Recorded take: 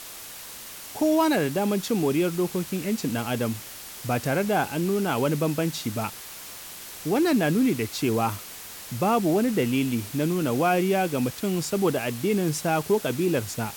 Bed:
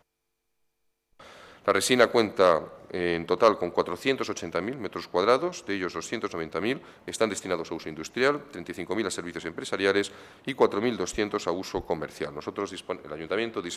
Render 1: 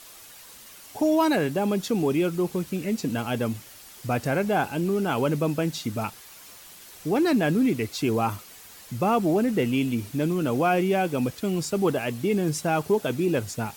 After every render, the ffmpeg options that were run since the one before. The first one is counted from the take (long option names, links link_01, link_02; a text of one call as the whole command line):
ffmpeg -i in.wav -af "afftdn=noise_reduction=8:noise_floor=-41" out.wav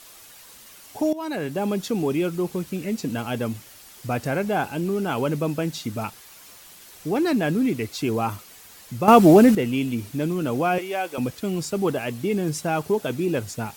ffmpeg -i in.wav -filter_complex "[0:a]asettb=1/sr,asplit=3[link_01][link_02][link_03];[link_01]atrim=end=10.784[link_04];[link_02]atrim=start=10.78:end=11.18,asetpts=PTS-STARTPTS,afade=type=in:duration=0.004:curve=qsin,afade=type=out:start_time=0.396:duration=0.004:curve=qsin,highpass=540[link_05];[link_03]atrim=start=11.176[link_06];[link_04][link_05]acrossfade=duration=0.004:curve1=hsin:curve2=qsin[link_07];[link_07][link_06]acrossfade=duration=0.004:curve1=qsin:curve2=hsin,asplit=4[link_08][link_09][link_10][link_11];[link_08]atrim=end=1.13,asetpts=PTS-STARTPTS,afade=type=out:start_time=1.126:duration=0.004:curve=hsin:silence=0.149624[link_12];[link_09]atrim=start=1.13:end=9.082,asetpts=PTS-STARTPTS,afade=type=in:duration=0.5:silence=0.149624[link_13];[link_10]atrim=start=9.078:end=9.552,asetpts=PTS-STARTPTS,volume=10.5dB[link_14];[link_11]atrim=start=9.548[link_15];[link_12][link_13]concat=n=2:v=0:a=1[link_16];[link_16][link_14]acrossfade=duration=0.004:curve1=hsin:curve2=hsin[link_17];[link_17][link_15]acrossfade=duration=0.004:curve1=hsin:curve2=hsin" out.wav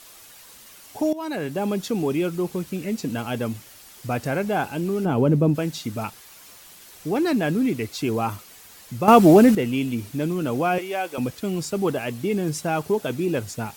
ffmpeg -i in.wav -filter_complex "[0:a]asplit=3[link_01][link_02][link_03];[link_01]afade=type=out:start_time=5.04:duration=0.02[link_04];[link_02]tiltshelf=frequency=790:gain=9,afade=type=in:start_time=5.04:duration=0.02,afade=type=out:start_time=5.54:duration=0.02[link_05];[link_03]afade=type=in:start_time=5.54:duration=0.02[link_06];[link_04][link_05][link_06]amix=inputs=3:normalize=0" out.wav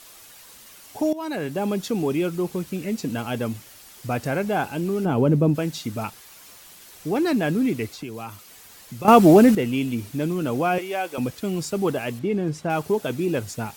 ffmpeg -i in.wav -filter_complex "[0:a]asettb=1/sr,asplit=3[link_01][link_02][link_03];[link_01]atrim=end=7.934[link_04];[link_02]atrim=start=7.93:end=9.05,asetpts=PTS-STARTPTS,afade=type=in:duration=0.004:curve=qsin,afade=type=out:start_time=1.116:duration=0.004:curve=qsin,acrossover=split=120|1800[link_05][link_06][link_07];[link_05]acompressor=threshold=-48dB:ratio=4[link_08];[link_06]acompressor=threshold=-35dB:ratio=4[link_09];[link_07]acompressor=threshold=-41dB:ratio=4[link_10];[link_08][link_09][link_10]amix=inputs=3:normalize=0[link_11];[link_03]atrim=start=9.046[link_12];[link_04][link_11]acrossfade=duration=0.004:curve1=hsin:curve2=qsin[link_13];[link_13][link_12]acrossfade=duration=0.004:curve1=qsin:curve2=hsin,asettb=1/sr,asplit=3[link_14][link_15][link_16];[link_14]atrim=end=12.194[link_17];[link_15]atrim=start=12.19:end=12.7,asetpts=PTS-STARTPTS,afade=type=in:duration=0.004:curve=qsin,afade=type=out:start_time=0.506:duration=0.004:curve=qsin,aemphasis=mode=reproduction:type=75kf[link_18];[link_16]atrim=start=12.696[link_19];[link_17][link_18]acrossfade=duration=0.004:curve1=hsin:curve2=qsin[link_20];[link_20][link_19]acrossfade=duration=0.004:curve1=qsin:curve2=hsin" out.wav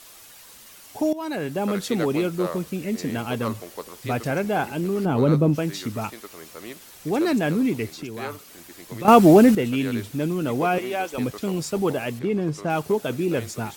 ffmpeg -i in.wav -i bed.wav -filter_complex "[1:a]volume=-11dB[link_01];[0:a][link_01]amix=inputs=2:normalize=0" out.wav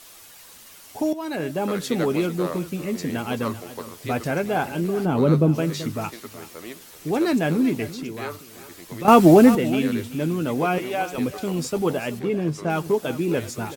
ffmpeg -i in.wav -filter_complex "[0:a]asplit=2[link_01][link_02];[link_02]adelay=12,volume=-11.5dB[link_03];[link_01][link_03]amix=inputs=2:normalize=0,aecho=1:1:383:0.178" out.wav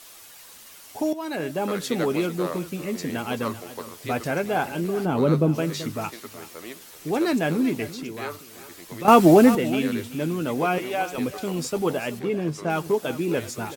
ffmpeg -i in.wav -af "lowshelf=frequency=260:gain=-4.5" out.wav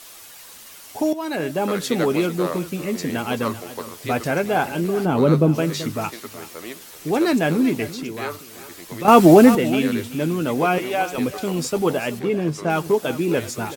ffmpeg -i in.wav -af "volume=4dB,alimiter=limit=-1dB:level=0:latency=1" out.wav